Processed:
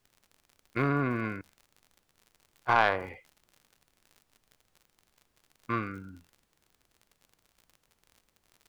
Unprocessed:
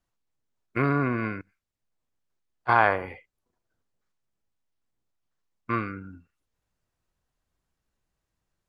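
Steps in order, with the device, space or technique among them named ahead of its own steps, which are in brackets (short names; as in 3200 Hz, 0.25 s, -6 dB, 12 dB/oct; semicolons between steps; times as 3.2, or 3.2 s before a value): record under a worn stylus (tracing distortion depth 0.053 ms; crackle 55/s -40 dBFS; pink noise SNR 39 dB); gain -3.5 dB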